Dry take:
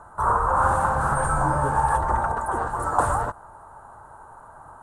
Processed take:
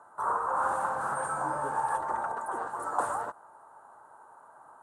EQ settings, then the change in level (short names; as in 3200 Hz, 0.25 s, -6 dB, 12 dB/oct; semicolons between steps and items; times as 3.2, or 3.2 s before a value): HPF 280 Hz 12 dB/oct; -8.0 dB